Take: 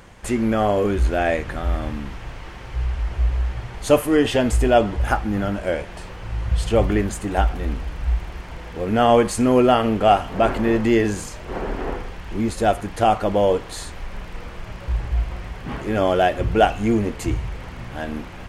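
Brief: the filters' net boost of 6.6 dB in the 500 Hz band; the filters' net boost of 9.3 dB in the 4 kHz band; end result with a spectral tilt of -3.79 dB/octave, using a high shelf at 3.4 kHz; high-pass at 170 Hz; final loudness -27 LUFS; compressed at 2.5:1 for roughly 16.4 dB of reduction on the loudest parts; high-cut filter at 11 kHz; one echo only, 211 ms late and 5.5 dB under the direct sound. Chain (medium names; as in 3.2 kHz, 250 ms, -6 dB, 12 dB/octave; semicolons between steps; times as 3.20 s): high-pass 170 Hz; low-pass 11 kHz; peaking EQ 500 Hz +8 dB; treble shelf 3.4 kHz +6 dB; peaking EQ 4 kHz +9 dB; compression 2.5:1, threshold -30 dBFS; delay 211 ms -5.5 dB; trim +1.5 dB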